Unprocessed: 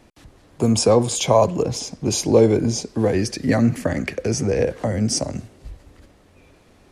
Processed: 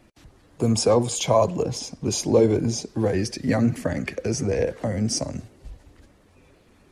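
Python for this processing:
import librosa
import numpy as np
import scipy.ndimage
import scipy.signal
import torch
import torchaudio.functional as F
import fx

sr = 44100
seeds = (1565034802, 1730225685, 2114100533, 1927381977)

y = fx.spec_quant(x, sr, step_db=15)
y = F.gain(torch.from_numpy(y), -3.0).numpy()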